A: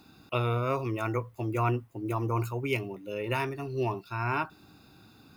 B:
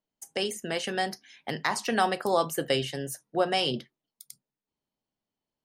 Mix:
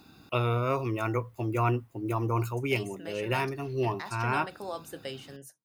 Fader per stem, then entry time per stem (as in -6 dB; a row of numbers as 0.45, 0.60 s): +1.0, -12.5 dB; 0.00, 2.35 s